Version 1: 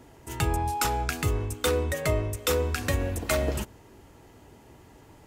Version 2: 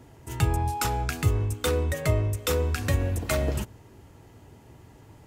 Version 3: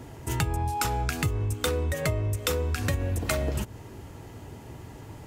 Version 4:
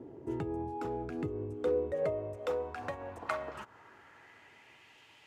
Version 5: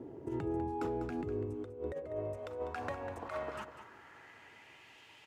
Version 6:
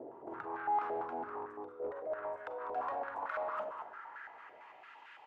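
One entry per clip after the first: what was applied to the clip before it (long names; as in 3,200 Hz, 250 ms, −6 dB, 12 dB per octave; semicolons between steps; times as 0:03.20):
parametric band 110 Hz +7.5 dB 1.3 octaves; level −1.5 dB
downward compressor 6 to 1, threshold −32 dBFS, peak gain reduction 14.5 dB; level +7.5 dB
band-pass filter sweep 360 Hz → 2,800 Hz, 0:01.45–0:05.02; level +2.5 dB
compressor whose output falls as the input rises −36 dBFS, ratio −0.5; on a send: single-tap delay 198 ms −11 dB; on the sum: level −1 dB
four-comb reverb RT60 0.7 s, combs from 32 ms, DRR 7 dB; soft clipping −37 dBFS, distortion −10 dB; band-pass on a step sequencer 8.9 Hz 640–1,500 Hz; level +13 dB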